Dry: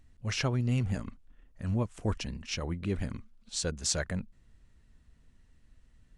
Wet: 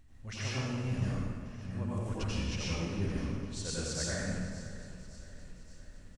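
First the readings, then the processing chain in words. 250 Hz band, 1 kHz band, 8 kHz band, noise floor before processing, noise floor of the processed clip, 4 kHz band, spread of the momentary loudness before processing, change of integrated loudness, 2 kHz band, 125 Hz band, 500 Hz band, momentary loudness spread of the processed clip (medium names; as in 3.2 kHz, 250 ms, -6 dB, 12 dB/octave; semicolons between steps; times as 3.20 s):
-1.5 dB, -2.0 dB, -4.0 dB, -63 dBFS, -52 dBFS, -3.0 dB, 10 LU, -3.0 dB, -1.0 dB, -2.0 dB, -2.5 dB, 17 LU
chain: reverse; compression 5:1, threshold -41 dBFS, peak gain reduction 15 dB; reverse; feedback delay 568 ms, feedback 57%, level -16.5 dB; plate-style reverb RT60 1.9 s, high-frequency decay 0.65×, pre-delay 75 ms, DRR -8.5 dB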